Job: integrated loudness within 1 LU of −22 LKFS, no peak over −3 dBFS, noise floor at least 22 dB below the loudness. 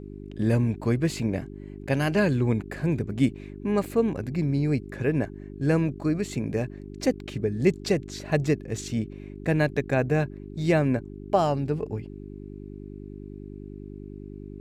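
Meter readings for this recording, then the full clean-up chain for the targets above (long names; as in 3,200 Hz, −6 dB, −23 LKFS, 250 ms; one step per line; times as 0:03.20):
mains hum 50 Hz; hum harmonics up to 400 Hz; level of the hum −38 dBFS; integrated loudness −26.5 LKFS; sample peak −8.5 dBFS; target loudness −22.0 LKFS
→ hum removal 50 Hz, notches 8
level +4.5 dB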